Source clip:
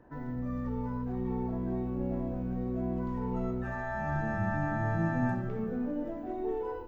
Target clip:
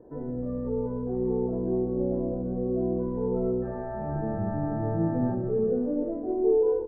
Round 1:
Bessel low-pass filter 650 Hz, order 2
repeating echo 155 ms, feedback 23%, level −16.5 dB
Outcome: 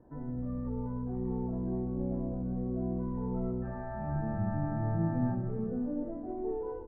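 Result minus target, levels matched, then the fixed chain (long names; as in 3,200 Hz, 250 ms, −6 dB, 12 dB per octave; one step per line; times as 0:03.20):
500 Hz band −6.0 dB
Bessel low-pass filter 650 Hz, order 2
parametric band 440 Hz +15 dB 1 octave
repeating echo 155 ms, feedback 23%, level −16.5 dB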